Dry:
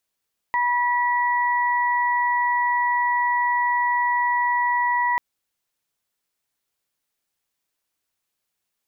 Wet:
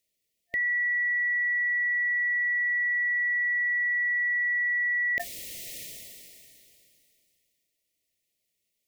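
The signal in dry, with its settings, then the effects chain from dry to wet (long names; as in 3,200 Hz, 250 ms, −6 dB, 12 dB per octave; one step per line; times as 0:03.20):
steady harmonic partials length 4.64 s, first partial 972 Hz, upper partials −4 dB, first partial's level −19.5 dB
brick-wall band-stop 690–1,800 Hz
level that may fall only so fast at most 21 dB per second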